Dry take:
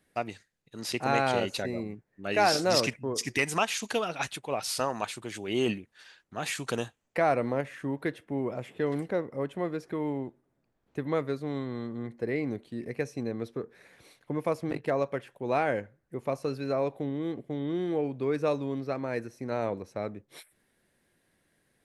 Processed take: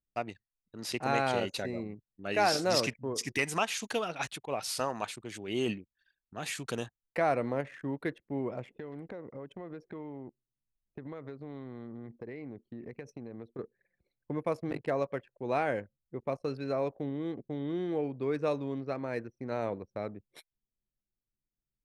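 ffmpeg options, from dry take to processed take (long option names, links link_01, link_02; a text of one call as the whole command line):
ffmpeg -i in.wav -filter_complex "[0:a]asettb=1/sr,asplit=3[link_01][link_02][link_03];[link_01]atrim=end=5.114[link_04];[link_02]atrim=start=5.11:end=6.82,asetpts=PTS-STARTPTS,afade=type=in:duration=0.004:curve=qsin,afade=type=out:start_time=1.706:duration=0.004:curve=qsin,equalizer=frequency=940:width_type=o:width=2.1:gain=-3[link_05];[link_03]atrim=start=6.816[link_06];[link_04][link_05]acrossfade=duration=0.004:curve1=hsin:curve2=qsin[link_07];[link_07][link_06]acrossfade=duration=0.004:curve1=qsin:curve2=hsin,asettb=1/sr,asplit=3[link_08][link_09][link_10];[link_08]atrim=end=8.774[link_11];[link_09]atrim=start=8.77:end=13.59,asetpts=PTS-STARTPTS,afade=type=in:duration=0.004:curve=qsin,afade=type=out:start_time=4.816:duration=0.004:curve=qsin,acompressor=threshold=-35dB:ratio=10:attack=3.2:release=140:knee=1:detection=peak[link_12];[link_10]atrim=start=13.586[link_13];[link_11][link_12]acrossfade=duration=0.004:curve1=hsin:curve2=qsin[link_14];[link_14][link_13]acrossfade=duration=0.004:curve1=qsin:curve2=hsin,anlmdn=0.0251,volume=-3dB" out.wav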